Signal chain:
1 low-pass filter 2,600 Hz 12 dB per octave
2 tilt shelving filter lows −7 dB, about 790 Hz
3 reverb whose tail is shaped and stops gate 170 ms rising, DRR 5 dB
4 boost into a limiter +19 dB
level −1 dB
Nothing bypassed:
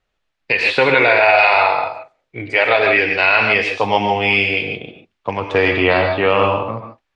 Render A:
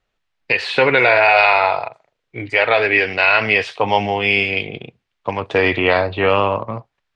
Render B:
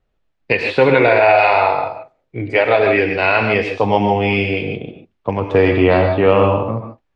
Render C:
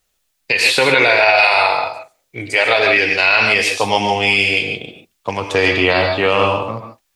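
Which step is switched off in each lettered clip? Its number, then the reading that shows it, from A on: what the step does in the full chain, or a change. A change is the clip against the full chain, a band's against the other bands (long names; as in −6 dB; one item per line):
3, change in momentary loudness spread +2 LU
2, 4 kHz band −8.5 dB
1, 4 kHz band +5.5 dB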